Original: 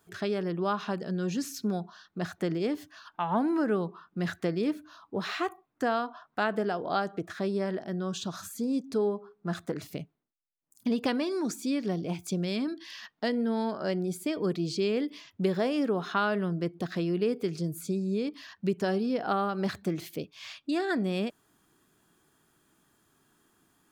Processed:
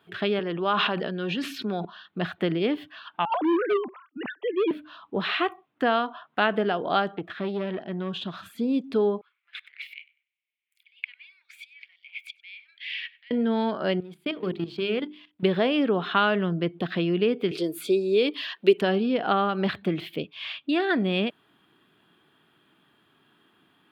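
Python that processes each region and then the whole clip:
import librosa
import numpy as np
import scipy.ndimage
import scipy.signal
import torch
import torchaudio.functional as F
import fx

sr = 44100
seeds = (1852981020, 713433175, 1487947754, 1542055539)

y = fx.chain(x, sr, fx.highpass(hz=330.0, slope=6),
    fx.high_shelf(hz=9200.0, db=-7.0),
    fx.sustainer(db_per_s=24.0), at=(0.39, 1.85))
y = fx.chain(y, sr, fx.sine_speech(),
    fx.overload_stage(gain_db=24.5),
    fx.band_widen(depth_pct=40), at=(3.25, 4.71))
y = fx.chain(y, sr, fx.high_shelf(hz=9300.0, db=-8.0),
    fx.tube_stage(drive_db=25.0, bias=0.6), at=(7.14, 8.46))
y = fx.chain(y, sr, fx.over_compress(threshold_db=-40.0, ratio=-1.0),
    fx.ladder_highpass(hz=2100.0, resonance_pct=80),
    fx.echo_filtered(ms=97, feedback_pct=26, hz=3200.0, wet_db=-19.0), at=(9.21, 13.31))
y = fx.chain(y, sr, fx.law_mismatch(coded='A'),
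    fx.level_steps(step_db=15),
    fx.hum_notches(base_hz=50, count=8), at=(14.0, 15.43))
y = fx.chain(y, sr, fx.highpass_res(hz=380.0, q=2.4),
    fx.peak_eq(hz=11000.0, db=13.5, octaves=2.9), at=(17.51, 18.81))
y = scipy.signal.sosfilt(scipy.signal.butter(2, 120.0, 'highpass', fs=sr, output='sos'), y)
y = fx.high_shelf_res(y, sr, hz=4500.0, db=-13.0, q=3.0)
y = F.gain(torch.from_numpy(y), 4.5).numpy()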